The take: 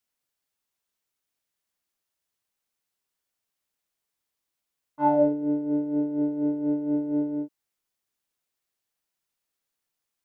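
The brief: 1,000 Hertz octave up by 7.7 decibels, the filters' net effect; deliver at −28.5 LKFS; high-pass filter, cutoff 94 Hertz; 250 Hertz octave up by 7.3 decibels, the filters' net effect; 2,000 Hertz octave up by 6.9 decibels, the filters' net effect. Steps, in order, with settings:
high-pass filter 94 Hz
parametric band 250 Hz +8.5 dB
parametric band 1,000 Hz +7.5 dB
parametric band 2,000 Hz +6 dB
level −9 dB

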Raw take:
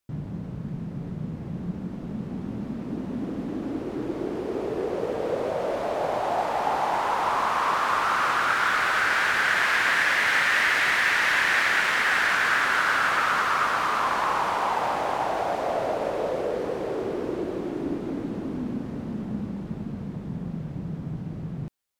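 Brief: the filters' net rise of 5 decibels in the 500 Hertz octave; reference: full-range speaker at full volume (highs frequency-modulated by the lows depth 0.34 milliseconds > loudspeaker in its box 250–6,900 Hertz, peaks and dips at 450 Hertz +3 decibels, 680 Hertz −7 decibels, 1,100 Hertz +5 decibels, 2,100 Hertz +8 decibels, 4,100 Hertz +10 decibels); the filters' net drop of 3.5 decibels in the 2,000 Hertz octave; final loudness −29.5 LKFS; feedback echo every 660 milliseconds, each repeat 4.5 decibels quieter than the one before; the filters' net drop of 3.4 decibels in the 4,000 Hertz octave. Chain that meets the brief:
parametric band 500 Hz +7 dB
parametric band 2,000 Hz −8 dB
parametric band 4,000 Hz −7.5 dB
repeating echo 660 ms, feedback 60%, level −4.5 dB
highs frequency-modulated by the lows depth 0.34 ms
loudspeaker in its box 250–6,900 Hz, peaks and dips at 450 Hz +3 dB, 680 Hz −7 dB, 1,100 Hz +5 dB, 2,100 Hz +8 dB, 4,100 Hz +10 dB
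level −7 dB

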